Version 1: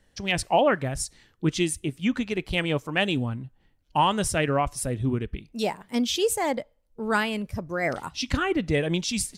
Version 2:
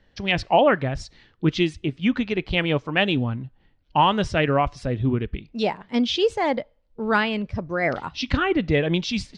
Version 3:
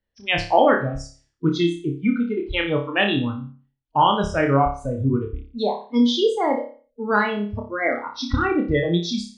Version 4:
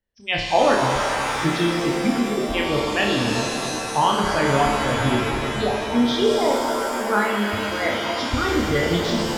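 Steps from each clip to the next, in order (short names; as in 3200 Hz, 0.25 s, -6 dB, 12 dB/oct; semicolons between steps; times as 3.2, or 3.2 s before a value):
LPF 4600 Hz 24 dB/oct; gain +3.5 dB
spectral noise reduction 23 dB; flutter echo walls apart 5 m, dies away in 0.4 s
shimmer reverb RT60 3.2 s, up +7 st, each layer -2 dB, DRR 2 dB; gain -2.5 dB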